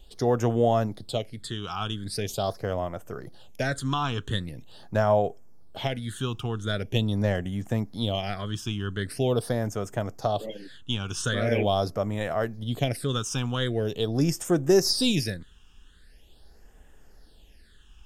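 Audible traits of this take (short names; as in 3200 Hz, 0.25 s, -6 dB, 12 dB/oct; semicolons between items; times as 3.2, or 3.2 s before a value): phasing stages 8, 0.43 Hz, lowest notch 570–4300 Hz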